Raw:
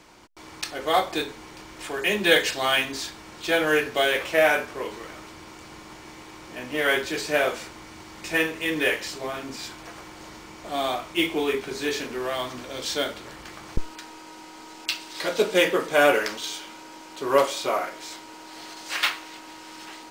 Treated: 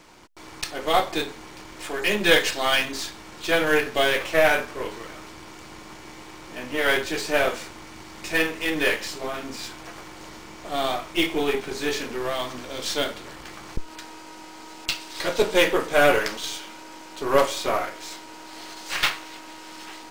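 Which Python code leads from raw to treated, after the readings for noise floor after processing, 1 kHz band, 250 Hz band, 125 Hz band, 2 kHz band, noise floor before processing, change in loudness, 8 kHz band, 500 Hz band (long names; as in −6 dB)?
−43 dBFS, +1.0 dB, +1.0 dB, +2.0 dB, +0.5 dB, −44 dBFS, +1.0 dB, +1.5 dB, +0.5 dB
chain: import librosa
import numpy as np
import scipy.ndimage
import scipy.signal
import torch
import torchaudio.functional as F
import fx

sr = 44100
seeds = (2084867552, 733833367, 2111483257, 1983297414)

y = np.where(x < 0.0, 10.0 ** (-7.0 / 20.0) * x, x)
y = F.gain(torch.from_numpy(y), 3.5).numpy()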